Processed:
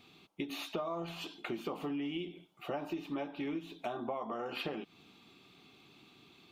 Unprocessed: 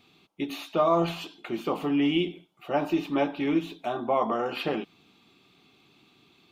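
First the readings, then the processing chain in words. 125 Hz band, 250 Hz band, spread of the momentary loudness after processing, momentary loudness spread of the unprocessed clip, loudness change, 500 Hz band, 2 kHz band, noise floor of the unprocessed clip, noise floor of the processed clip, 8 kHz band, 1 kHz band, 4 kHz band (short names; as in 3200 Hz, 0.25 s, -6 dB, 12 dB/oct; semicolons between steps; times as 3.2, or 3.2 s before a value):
-11.5 dB, -12.0 dB, 21 LU, 11 LU, -12.0 dB, -12.5 dB, -9.0 dB, -62 dBFS, -63 dBFS, n/a, -13.0 dB, -8.0 dB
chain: compressor 10:1, threshold -35 dBFS, peak gain reduction 16.5 dB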